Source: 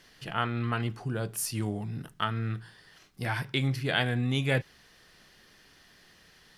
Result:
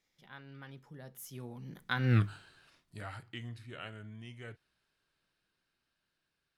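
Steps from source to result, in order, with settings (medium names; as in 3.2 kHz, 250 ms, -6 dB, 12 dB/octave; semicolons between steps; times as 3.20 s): Doppler pass-by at 2.17 s, 48 m/s, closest 3.7 m; trim +7.5 dB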